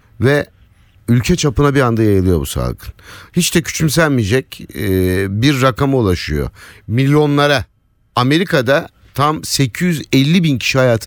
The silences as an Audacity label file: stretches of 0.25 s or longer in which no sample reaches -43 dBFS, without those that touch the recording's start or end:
7.650000	8.160000	silence